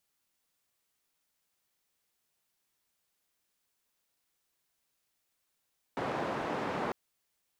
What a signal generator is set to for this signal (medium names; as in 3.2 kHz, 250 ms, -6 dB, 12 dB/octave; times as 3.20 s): noise band 150–910 Hz, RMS -34.5 dBFS 0.95 s